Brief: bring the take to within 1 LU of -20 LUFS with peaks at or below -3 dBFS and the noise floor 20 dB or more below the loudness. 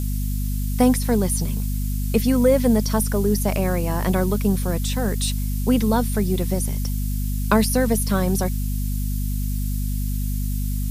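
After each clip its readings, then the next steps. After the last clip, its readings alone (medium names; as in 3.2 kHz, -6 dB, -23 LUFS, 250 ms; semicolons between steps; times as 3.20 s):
hum 50 Hz; highest harmonic 250 Hz; hum level -21 dBFS; noise floor -24 dBFS; noise floor target -42 dBFS; loudness -22.0 LUFS; peak level -3.5 dBFS; loudness target -20.0 LUFS
-> de-hum 50 Hz, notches 5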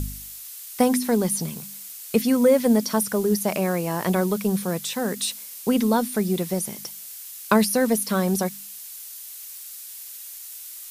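hum not found; noise floor -39 dBFS; noise floor target -43 dBFS
-> noise print and reduce 6 dB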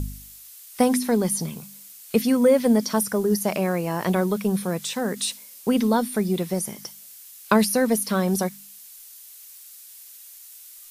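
noise floor -45 dBFS; loudness -23.0 LUFS; peak level -5.0 dBFS; loudness target -20.0 LUFS
-> trim +3 dB; peak limiter -3 dBFS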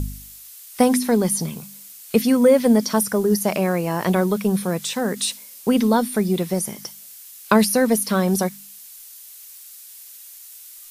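loudness -20.0 LUFS; peak level -3.0 dBFS; noise floor -42 dBFS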